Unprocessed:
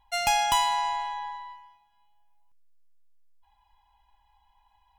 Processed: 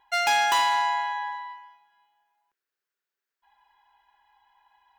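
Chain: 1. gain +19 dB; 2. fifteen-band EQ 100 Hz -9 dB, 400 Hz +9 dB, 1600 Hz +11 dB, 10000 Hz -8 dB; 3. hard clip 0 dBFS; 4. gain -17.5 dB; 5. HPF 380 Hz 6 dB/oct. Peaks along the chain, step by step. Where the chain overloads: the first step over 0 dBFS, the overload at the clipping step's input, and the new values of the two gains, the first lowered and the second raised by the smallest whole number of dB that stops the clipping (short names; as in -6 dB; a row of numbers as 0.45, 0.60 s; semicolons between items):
+8.5, +9.0, 0.0, -17.5, -14.0 dBFS; step 1, 9.0 dB; step 1 +10 dB, step 4 -8.5 dB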